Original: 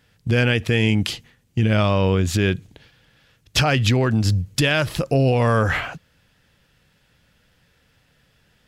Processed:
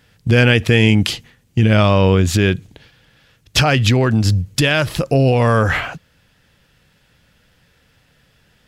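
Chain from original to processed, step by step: vocal rider 2 s; gain +4 dB

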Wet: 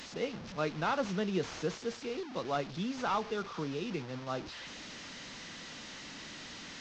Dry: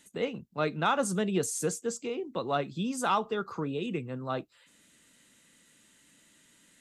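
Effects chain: delta modulation 32 kbps, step -35 dBFS; gain -4 dB

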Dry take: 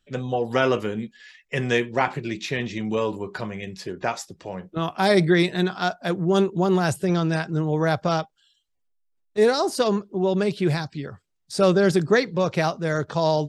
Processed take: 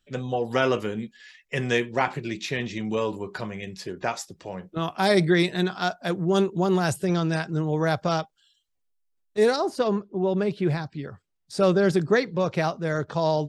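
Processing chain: high shelf 3900 Hz +2.5 dB, from 9.56 s -12 dB, from 10.99 s -4.5 dB; gain -2 dB

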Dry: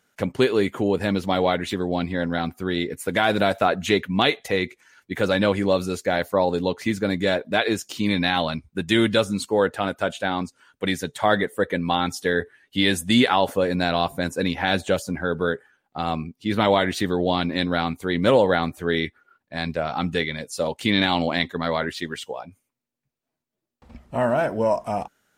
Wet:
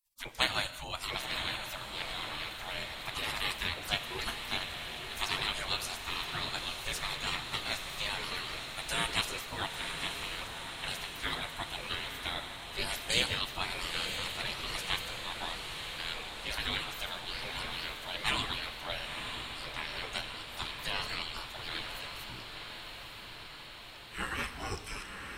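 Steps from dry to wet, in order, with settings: spectral gate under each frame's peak -25 dB weak; low shelf 180 Hz +11.5 dB; diffused feedback echo 0.963 s, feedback 69%, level -6.5 dB; non-linear reverb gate 0.22 s flat, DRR 11.5 dB; gain +3 dB

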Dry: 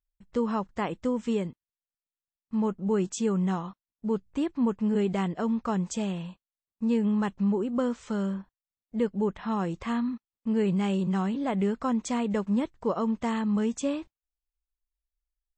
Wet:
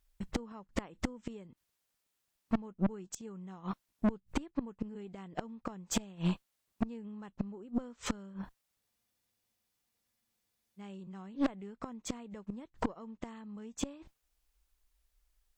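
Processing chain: flipped gate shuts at -23 dBFS, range -34 dB; tube stage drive 40 dB, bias 0.5; spectral freeze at 8.82, 1.97 s; gain +16 dB

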